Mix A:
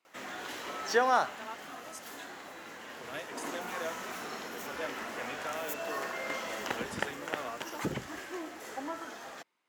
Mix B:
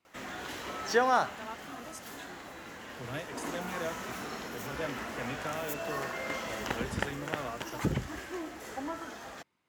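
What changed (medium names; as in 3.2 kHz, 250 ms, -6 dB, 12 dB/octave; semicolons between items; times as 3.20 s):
background: add high-pass 330 Hz 6 dB/octave; master: remove Bessel high-pass 430 Hz, order 2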